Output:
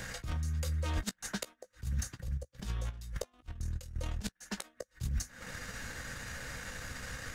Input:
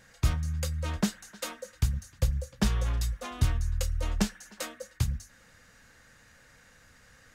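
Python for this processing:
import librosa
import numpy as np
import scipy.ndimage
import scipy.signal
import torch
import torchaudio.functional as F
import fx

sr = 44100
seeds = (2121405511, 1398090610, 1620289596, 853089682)

y = fx.over_compress(x, sr, threshold_db=-38.0, ratio=-1.0)
y = fx.transient(y, sr, attack_db=3, sustain_db=-12)
y = fx.gate_flip(y, sr, shuts_db=-24.0, range_db=-31)
y = fx.step_gate(y, sr, bpm=171, pattern='x...x.xx.xx..xxx', floor_db=-12.0, edge_ms=4.5, at=(2.14, 4.5), fade=0.02)
y = fx.doubler(y, sr, ms=16.0, db=-12)
y = fx.band_squash(y, sr, depth_pct=40)
y = y * 10.0 ** (4.0 / 20.0)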